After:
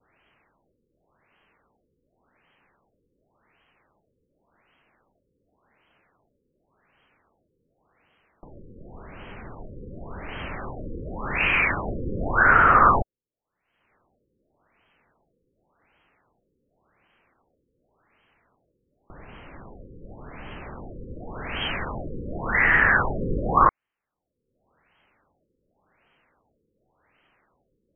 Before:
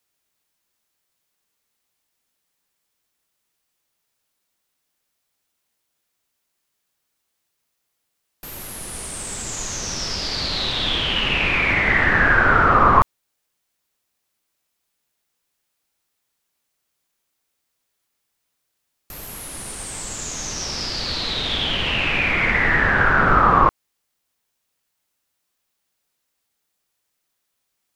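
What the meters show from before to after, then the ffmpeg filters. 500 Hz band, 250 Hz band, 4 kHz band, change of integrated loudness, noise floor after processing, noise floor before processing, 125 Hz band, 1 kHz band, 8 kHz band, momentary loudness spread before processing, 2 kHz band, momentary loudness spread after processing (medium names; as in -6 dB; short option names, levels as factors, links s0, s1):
-4.5 dB, -5.0 dB, -17.0 dB, -3.0 dB, -77 dBFS, -76 dBFS, -5.5 dB, -3.5 dB, under -40 dB, 17 LU, -4.5 dB, 24 LU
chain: -af "acompressor=mode=upward:threshold=0.0282:ratio=2.5,adynamicequalizer=threshold=0.0316:dfrequency=1600:dqfactor=0.76:tfrequency=1600:tqfactor=0.76:attack=5:release=100:ratio=0.375:range=3:mode=boostabove:tftype=bell,afftfilt=real='re*lt(b*sr/1024,520*pow(3300/520,0.5+0.5*sin(2*PI*0.89*pts/sr)))':imag='im*lt(b*sr/1024,520*pow(3300/520,0.5+0.5*sin(2*PI*0.89*pts/sr)))':win_size=1024:overlap=0.75,volume=0.531"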